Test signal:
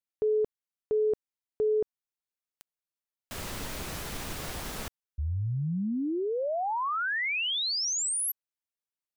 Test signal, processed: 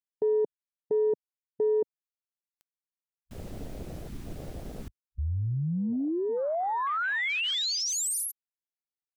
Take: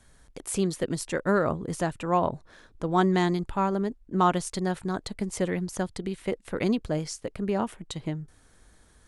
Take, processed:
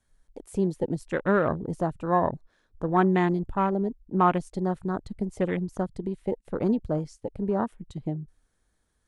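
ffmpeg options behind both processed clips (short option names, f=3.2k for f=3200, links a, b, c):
-af "afwtdn=0.02,volume=1dB"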